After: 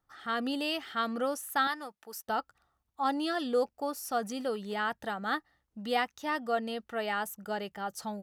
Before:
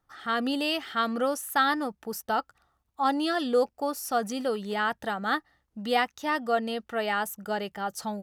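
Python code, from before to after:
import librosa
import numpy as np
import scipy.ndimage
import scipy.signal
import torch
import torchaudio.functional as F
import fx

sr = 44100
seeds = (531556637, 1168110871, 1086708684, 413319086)

y = fx.highpass(x, sr, hz=1000.0, slope=6, at=(1.67, 2.27))
y = F.gain(torch.from_numpy(y), -4.5).numpy()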